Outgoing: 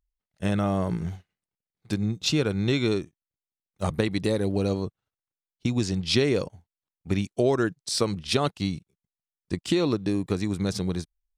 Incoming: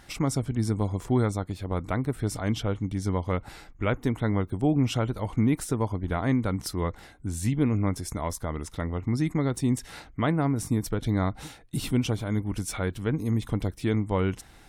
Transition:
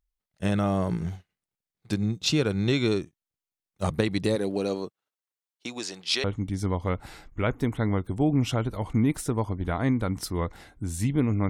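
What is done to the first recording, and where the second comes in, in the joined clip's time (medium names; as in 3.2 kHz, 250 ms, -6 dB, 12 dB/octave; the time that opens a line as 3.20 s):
outgoing
4.35–6.24 s: high-pass 200 Hz -> 690 Hz
6.24 s: go over to incoming from 2.67 s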